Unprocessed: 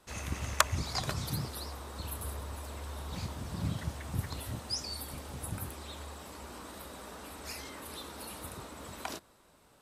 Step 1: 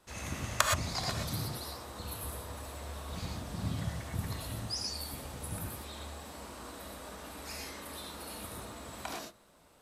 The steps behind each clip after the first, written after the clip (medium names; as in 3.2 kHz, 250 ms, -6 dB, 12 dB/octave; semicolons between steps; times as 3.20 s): gated-style reverb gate 140 ms rising, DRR 0 dB; trim -2.5 dB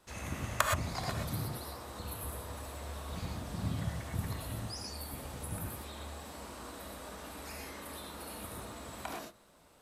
dynamic bell 5.2 kHz, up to -8 dB, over -52 dBFS, Q 0.83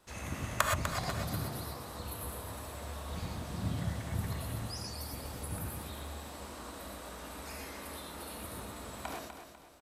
feedback delay 248 ms, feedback 38%, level -8.5 dB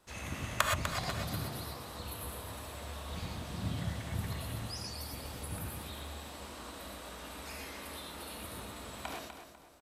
dynamic bell 3.1 kHz, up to +5 dB, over -57 dBFS, Q 1.1; trim -1.5 dB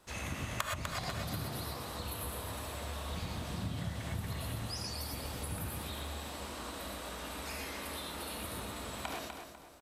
compression 3:1, threshold -39 dBFS, peak gain reduction 12.5 dB; trim +3.5 dB